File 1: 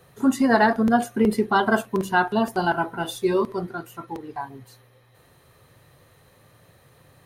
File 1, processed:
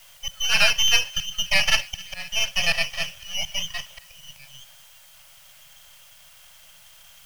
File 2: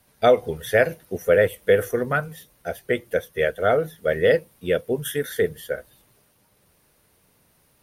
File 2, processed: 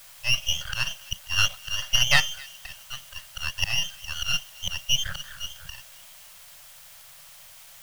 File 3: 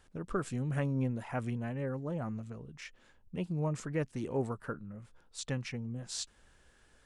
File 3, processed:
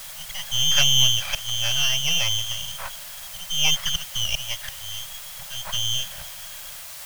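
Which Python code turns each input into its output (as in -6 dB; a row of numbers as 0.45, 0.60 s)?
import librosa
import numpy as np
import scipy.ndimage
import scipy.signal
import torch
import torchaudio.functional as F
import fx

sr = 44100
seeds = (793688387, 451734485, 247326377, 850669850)

p1 = fx.freq_invert(x, sr, carrier_hz=3300)
p2 = fx.auto_swell(p1, sr, attack_ms=342.0)
p3 = np.maximum(p2, 0.0)
p4 = fx.quant_dither(p3, sr, seeds[0], bits=8, dither='triangular')
p5 = p3 + (p4 * 10.0 ** (-4.0 / 20.0))
p6 = scipy.signal.sosfilt(scipy.signal.ellip(3, 1.0, 40, [170.0, 550.0], 'bandstop', fs=sr, output='sos'), p5)
p7 = fx.echo_wet_highpass(p6, sr, ms=265, feedback_pct=53, hz=1700.0, wet_db=-22.0)
y = p7 * 10.0 ** (-3 / 20.0) / np.max(np.abs(p7))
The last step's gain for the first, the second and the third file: 0.0, +3.5, +14.0 dB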